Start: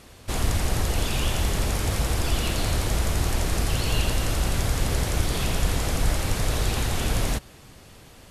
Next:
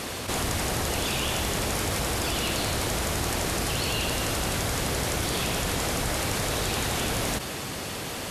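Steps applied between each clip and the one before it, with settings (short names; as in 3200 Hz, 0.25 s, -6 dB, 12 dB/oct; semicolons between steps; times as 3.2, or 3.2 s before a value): HPF 200 Hz 6 dB/oct; fast leveller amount 70%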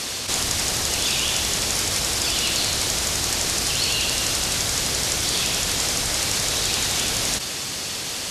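bell 5700 Hz +14 dB 2.3 oct; gain -2.5 dB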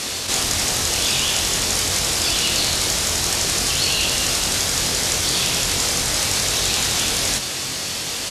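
doubler 23 ms -5 dB; gain +1.5 dB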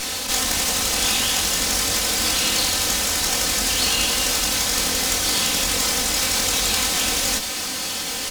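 minimum comb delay 3.9 ms; gain +1 dB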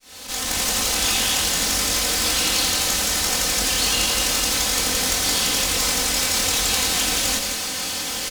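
opening faded in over 0.62 s; echo 0.173 s -6 dB; gain -1 dB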